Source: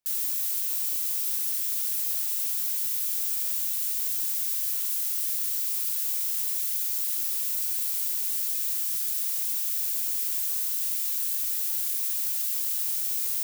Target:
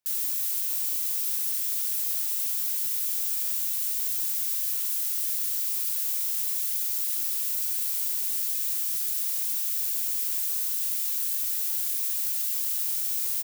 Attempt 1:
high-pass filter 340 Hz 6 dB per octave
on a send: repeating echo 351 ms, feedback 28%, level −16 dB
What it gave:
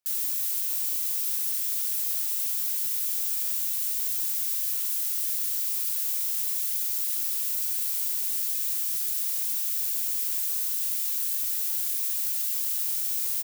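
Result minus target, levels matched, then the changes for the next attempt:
125 Hz band −6.5 dB
change: high-pass filter 88 Hz 6 dB per octave

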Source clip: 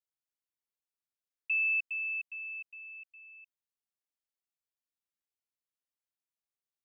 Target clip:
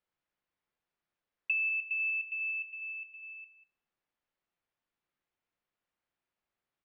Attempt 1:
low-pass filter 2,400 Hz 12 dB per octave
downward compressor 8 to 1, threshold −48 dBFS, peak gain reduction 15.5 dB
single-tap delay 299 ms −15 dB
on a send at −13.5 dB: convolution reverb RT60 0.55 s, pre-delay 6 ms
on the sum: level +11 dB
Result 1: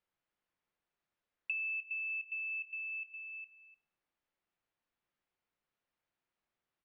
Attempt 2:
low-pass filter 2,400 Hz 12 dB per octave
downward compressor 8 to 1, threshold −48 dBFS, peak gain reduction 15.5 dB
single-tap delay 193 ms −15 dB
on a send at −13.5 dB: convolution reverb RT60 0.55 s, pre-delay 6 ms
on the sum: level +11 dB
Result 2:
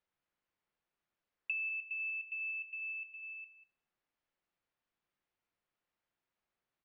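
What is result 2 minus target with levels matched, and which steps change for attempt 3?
downward compressor: peak gain reduction +6.5 dB
change: downward compressor 8 to 1, threshold −40.5 dBFS, peak gain reduction 9 dB

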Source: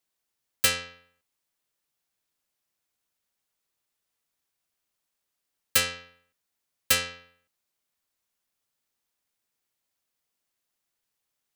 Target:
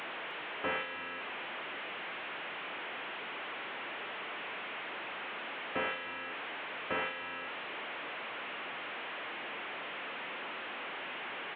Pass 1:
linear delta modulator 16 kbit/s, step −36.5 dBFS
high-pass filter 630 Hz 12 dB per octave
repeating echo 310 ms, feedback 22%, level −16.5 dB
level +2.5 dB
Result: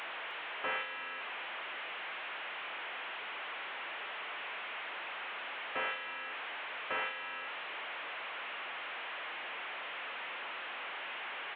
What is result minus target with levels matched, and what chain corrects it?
250 Hz band −9.5 dB
linear delta modulator 16 kbit/s, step −36.5 dBFS
high-pass filter 310 Hz 12 dB per octave
repeating echo 310 ms, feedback 22%, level −16.5 dB
level +2.5 dB

